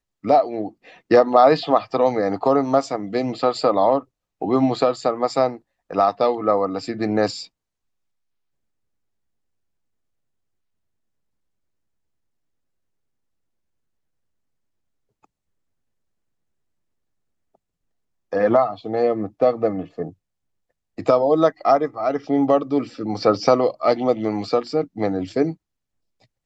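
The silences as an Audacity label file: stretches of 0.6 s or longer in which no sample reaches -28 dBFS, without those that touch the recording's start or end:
7.430000	18.330000	silence
20.090000	20.980000	silence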